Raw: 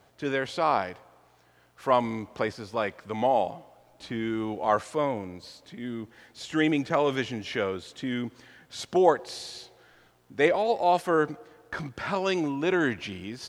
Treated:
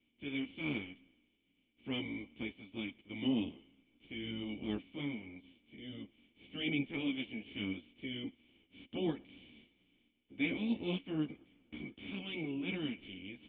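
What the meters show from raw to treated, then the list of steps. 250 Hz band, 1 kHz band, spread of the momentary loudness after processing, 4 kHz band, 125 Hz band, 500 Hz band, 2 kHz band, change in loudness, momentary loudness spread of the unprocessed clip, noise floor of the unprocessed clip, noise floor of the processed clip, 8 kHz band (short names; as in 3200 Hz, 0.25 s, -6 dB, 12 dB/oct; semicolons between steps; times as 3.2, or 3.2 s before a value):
-7.0 dB, -29.0 dB, 17 LU, -6.0 dB, -8.0 dB, -20.0 dB, -11.0 dB, -12.5 dB, 16 LU, -61 dBFS, -78 dBFS, under -35 dB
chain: spectral limiter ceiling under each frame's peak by 23 dB; vocal tract filter i; ensemble effect; gain +4 dB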